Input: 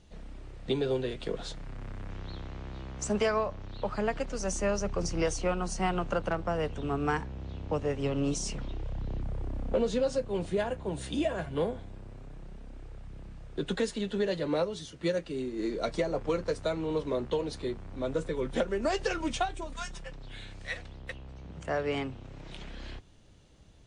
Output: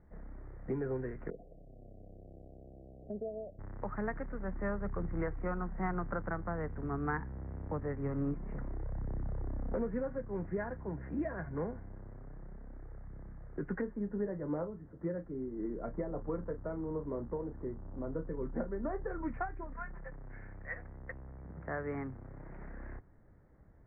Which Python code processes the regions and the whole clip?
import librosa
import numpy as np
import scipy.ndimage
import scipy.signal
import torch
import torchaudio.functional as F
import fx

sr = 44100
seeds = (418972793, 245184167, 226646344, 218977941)

y = fx.chain(x, sr, fx.steep_lowpass(hz=720.0, slope=96),
    fx.low_shelf(hz=320.0, db=-11.5),
    fx.quant_float(bits=8), at=(1.3, 3.59))
y = fx.chain(y, sr, fx.lowpass(hz=1000.0, slope=12),
    fx.doubler(ms=34.0, db=-11.5), at=(13.81, 19.23))
y = scipy.signal.sosfilt(scipy.signal.butter(12, 2000.0, 'lowpass', fs=sr, output='sos'), y)
y = fx.dynamic_eq(y, sr, hz=580.0, q=1.1, threshold_db=-43.0, ratio=4.0, max_db=-7)
y = F.gain(torch.from_numpy(y), -3.0).numpy()